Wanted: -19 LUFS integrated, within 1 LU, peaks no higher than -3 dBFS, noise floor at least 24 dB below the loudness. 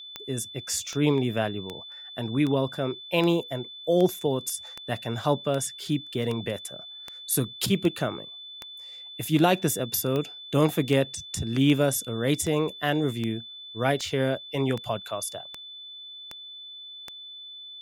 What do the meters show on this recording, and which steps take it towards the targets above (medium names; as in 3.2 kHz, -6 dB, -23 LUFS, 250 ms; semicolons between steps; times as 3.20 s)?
clicks found 23; steady tone 3.5 kHz; tone level -40 dBFS; loudness -27.0 LUFS; peak level -7.5 dBFS; loudness target -19.0 LUFS
-> de-click; band-stop 3.5 kHz, Q 30; trim +8 dB; peak limiter -3 dBFS